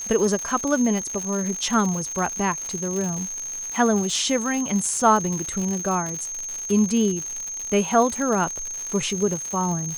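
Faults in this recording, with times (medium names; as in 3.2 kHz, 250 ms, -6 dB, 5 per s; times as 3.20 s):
crackle 160 per s -27 dBFS
whine 6.4 kHz -29 dBFS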